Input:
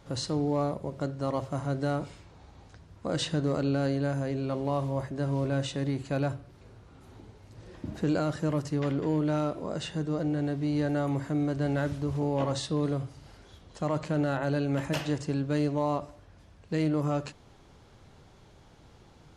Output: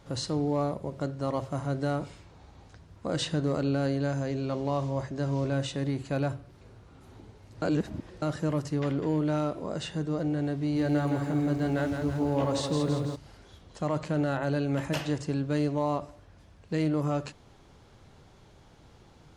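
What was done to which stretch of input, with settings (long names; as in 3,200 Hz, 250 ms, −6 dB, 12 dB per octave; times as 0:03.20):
0:04.00–0:05.53: low-pass with resonance 6,500 Hz, resonance Q 1.7
0:07.62–0:08.22: reverse
0:10.60–0:13.16: feedback echo at a low word length 165 ms, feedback 55%, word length 10 bits, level −5.5 dB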